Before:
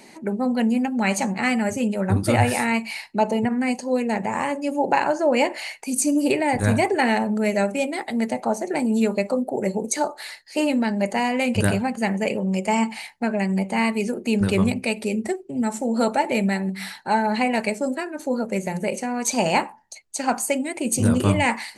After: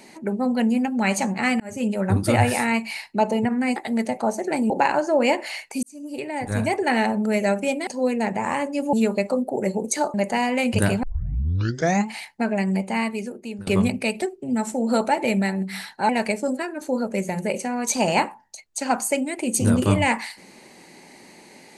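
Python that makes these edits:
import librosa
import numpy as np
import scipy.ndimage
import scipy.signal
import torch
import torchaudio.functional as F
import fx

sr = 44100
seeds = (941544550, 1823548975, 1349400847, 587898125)

y = fx.edit(x, sr, fx.fade_in_span(start_s=1.6, length_s=0.28),
    fx.swap(start_s=3.76, length_s=1.06, other_s=7.99, other_length_s=0.94),
    fx.fade_in_span(start_s=5.95, length_s=1.23),
    fx.cut(start_s=10.14, length_s=0.82),
    fx.tape_start(start_s=11.85, length_s=1.07),
    fx.fade_out_to(start_s=13.53, length_s=0.96, floor_db=-19.5),
    fx.cut(start_s=15.04, length_s=0.25),
    fx.cut(start_s=17.16, length_s=0.31), tone=tone)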